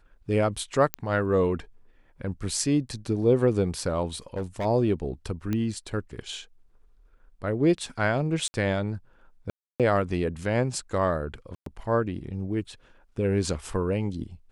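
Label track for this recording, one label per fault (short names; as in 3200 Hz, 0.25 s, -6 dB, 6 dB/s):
0.940000	0.940000	pop -10 dBFS
4.360000	4.660000	clipped -25.5 dBFS
5.530000	5.530000	pop -16 dBFS
8.480000	8.540000	gap 60 ms
9.500000	9.800000	gap 0.297 s
11.550000	11.660000	gap 0.113 s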